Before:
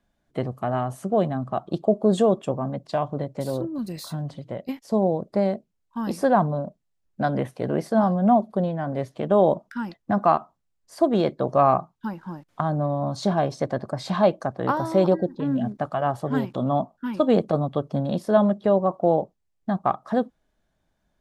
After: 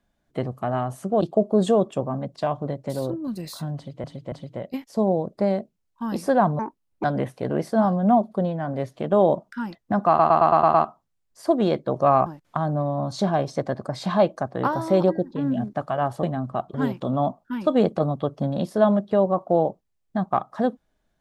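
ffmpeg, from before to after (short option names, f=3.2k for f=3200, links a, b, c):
-filter_complex "[0:a]asplit=15[a][b][c][d][e][f][g][h][i][j][k][l][m][n][o];[a]atrim=end=1.212[p];[b]atrim=start=1.718:end=4.552[q];[c]atrim=start=4.268:end=4.552[r];[d]atrim=start=4.268:end=6.544[s];[e]atrim=start=6.54:end=7.23,asetpts=PTS-STARTPTS,asetrate=67473,aresample=44100,atrim=end_sample=19888,asetpts=PTS-STARTPTS[t];[f]atrim=start=7.226:end=10.382[u];[g]atrim=start=10.268:end=10.382[v];[h]atrim=start=10.268:end=10.382[w];[i]atrim=start=10.268:end=10.382[x];[j]atrim=start=10.268:end=10.382[y];[k]atrim=start=10.268:end=10.382[z];[l]atrim=start=10.268:end=11.792[aa];[m]atrim=start=12.298:end=16.272[ab];[n]atrim=start=1.208:end=1.722[ac];[o]atrim=start=16.268[ad];[p][q]acrossfade=d=0.004:c1=hsin:c2=hsin[ae];[ae][r]acrossfade=d=0.004:c1=hsin:c2=hsin[af];[af][s]acrossfade=d=0.004:c1=hsin:c2=hsin[ag];[ag][t]acrossfade=d=0.004:c1=hsin:c2=hsin[ah];[ah][u]acrossfade=d=0.004:c1=hsin:c2=hsin[ai];[ai][v]acrossfade=d=0.004:c1=hsin:c2=hsin[aj];[aj][w]acrossfade=d=0.004:c1=hsin:c2=hsin[ak];[ak][x]acrossfade=d=0.004:c1=hsin:c2=hsin[al];[al][y]acrossfade=d=0.004:c1=hsin:c2=hsin[am];[am][z]acrossfade=d=0.004:c1=hsin:c2=hsin[an];[an][aa]acrossfade=d=0.004:c1=hsin:c2=hsin[ao];[ao][ab]acrossfade=d=0.004:c1=hsin:c2=hsin[ap];[ap][ac]acrossfade=d=0.004:c1=hsin:c2=hsin[aq];[aq][ad]acrossfade=d=0.004:c1=hsin:c2=hsin"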